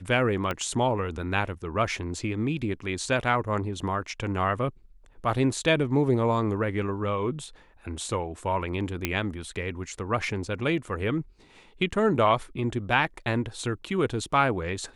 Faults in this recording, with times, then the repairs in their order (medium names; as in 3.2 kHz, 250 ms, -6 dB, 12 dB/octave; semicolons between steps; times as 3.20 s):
0.51 s: pop -15 dBFS
9.05 s: pop -9 dBFS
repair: de-click